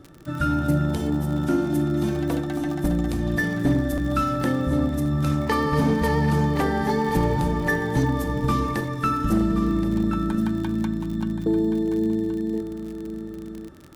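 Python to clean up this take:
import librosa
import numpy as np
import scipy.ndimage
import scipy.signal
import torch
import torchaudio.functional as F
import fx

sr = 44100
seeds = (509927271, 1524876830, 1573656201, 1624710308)

y = fx.fix_declip(x, sr, threshold_db=-13.5)
y = fx.fix_declick_ar(y, sr, threshold=6.5)
y = fx.fix_echo_inverse(y, sr, delay_ms=1075, level_db=-10.0)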